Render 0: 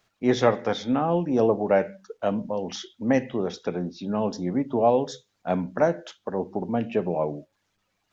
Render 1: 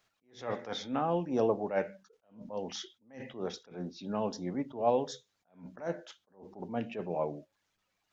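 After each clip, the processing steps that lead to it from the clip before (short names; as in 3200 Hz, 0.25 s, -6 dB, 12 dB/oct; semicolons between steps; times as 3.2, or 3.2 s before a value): low shelf 470 Hz -5 dB; attack slew limiter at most 160 dB/s; gain -4.5 dB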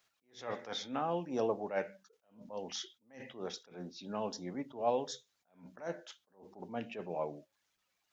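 tilt +1.5 dB/oct; gain -3 dB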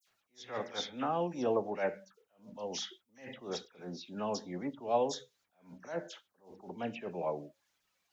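dispersion lows, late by 76 ms, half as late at 3000 Hz; gain +2 dB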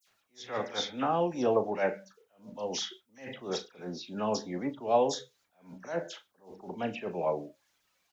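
doubler 37 ms -11.5 dB; gain +4.5 dB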